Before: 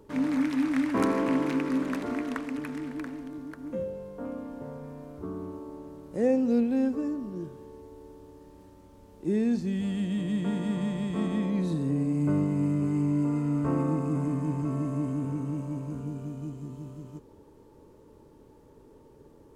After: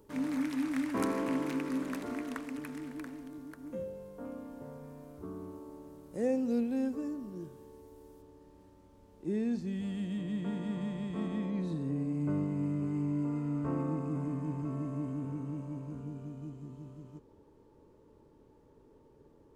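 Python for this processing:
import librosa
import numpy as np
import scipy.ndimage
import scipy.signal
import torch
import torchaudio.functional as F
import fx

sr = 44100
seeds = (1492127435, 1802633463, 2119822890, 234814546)

y = fx.high_shelf(x, sr, hz=7500.0, db=fx.steps((0.0, 10.5), (8.21, -3.0), (10.17, -9.0)))
y = y * 10.0 ** (-6.5 / 20.0)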